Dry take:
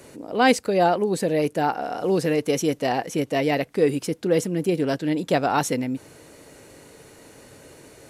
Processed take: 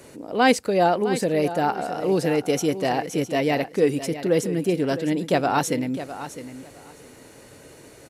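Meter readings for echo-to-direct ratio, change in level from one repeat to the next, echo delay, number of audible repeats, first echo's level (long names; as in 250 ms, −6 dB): −12.5 dB, −15.5 dB, 658 ms, 2, −12.5 dB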